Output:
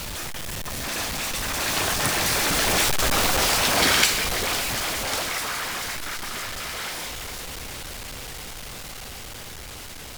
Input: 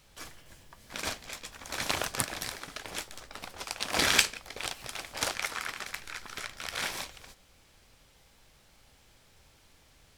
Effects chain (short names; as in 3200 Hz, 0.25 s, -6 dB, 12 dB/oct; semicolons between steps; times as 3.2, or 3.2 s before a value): zero-crossing step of -18 dBFS; Doppler pass-by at 3.11, 25 m/s, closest 22 m; gain +3 dB